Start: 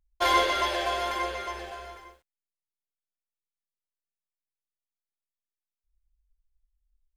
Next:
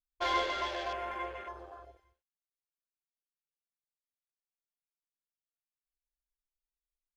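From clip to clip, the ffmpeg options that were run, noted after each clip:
ffmpeg -i in.wav -af "afwtdn=0.0158,volume=-8dB" out.wav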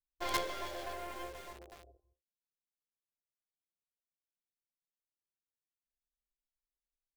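ffmpeg -i in.wav -filter_complex "[0:a]bandreject=frequency=2700:width=7.5,acrossover=split=630[link_01][link_02];[link_02]acrusher=bits=5:dc=4:mix=0:aa=0.000001[link_03];[link_01][link_03]amix=inputs=2:normalize=0,volume=-3dB" out.wav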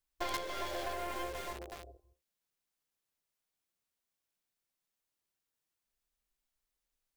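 ffmpeg -i in.wav -af "acompressor=threshold=-41dB:ratio=6,volume=7.5dB" out.wav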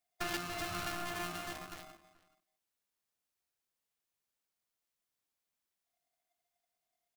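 ffmpeg -i in.wav -filter_complex "[0:a]asplit=2[link_01][link_02];[link_02]adelay=431.5,volume=-20dB,highshelf=frequency=4000:gain=-9.71[link_03];[link_01][link_03]amix=inputs=2:normalize=0,aeval=exprs='val(0)*sgn(sin(2*PI*700*n/s))':channel_layout=same,volume=-1dB" out.wav

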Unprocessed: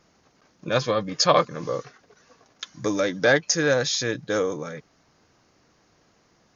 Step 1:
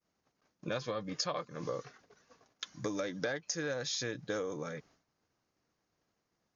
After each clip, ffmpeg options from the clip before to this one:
ffmpeg -i in.wav -af "agate=range=-33dB:threshold=-52dB:ratio=3:detection=peak,acompressor=threshold=-26dB:ratio=12,volume=-6dB" out.wav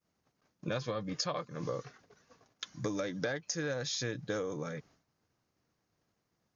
ffmpeg -i in.wav -af "equalizer=frequency=110:width=0.79:gain=5.5" out.wav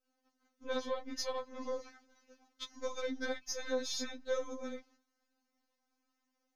ffmpeg -i in.wav -af "aeval=exprs='if(lt(val(0),0),0.708*val(0),val(0))':channel_layout=same,afftfilt=real='re*3.46*eq(mod(b,12),0)':imag='im*3.46*eq(mod(b,12),0)':win_size=2048:overlap=0.75,volume=1dB" out.wav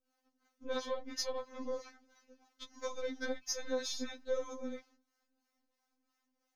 ffmpeg -i in.wav -filter_complex "[0:a]acrossover=split=570[link_01][link_02];[link_01]aeval=exprs='val(0)*(1-0.7/2+0.7/2*cos(2*PI*3*n/s))':channel_layout=same[link_03];[link_02]aeval=exprs='val(0)*(1-0.7/2-0.7/2*cos(2*PI*3*n/s))':channel_layout=same[link_04];[link_03][link_04]amix=inputs=2:normalize=0,volume=3dB" out.wav

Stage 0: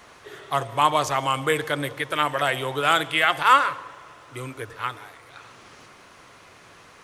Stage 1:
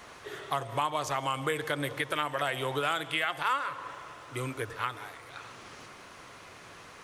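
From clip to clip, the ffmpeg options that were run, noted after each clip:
ffmpeg -i in.wav -af "acompressor=threshold=-28dB:ratio=4" out.wav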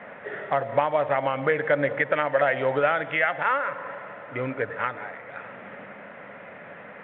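ffmpeg -i in.wav -af "acrusher=bits=5:mode=log:mix=0:aa=0.000001,highpass=180,equalizer=frequency=200:width_type=q:width=4:gain=9,equalizer=frequency=350:width_type=q:width=4:gain=-9,equalizer=frequency=570:width_type=q:width=4:gain=8,equalizer=frequency=1100:width_type=q:width=4:gain=-9,equalizer=frequency=1900:width_type=q:width=4:gain=4,lowpass=frequency=2100:width=0.5412,lowpass=frequency=2100:width=1.3066,volume=8dB" -ar 8000 -c:a pcm_mulaw out.wav

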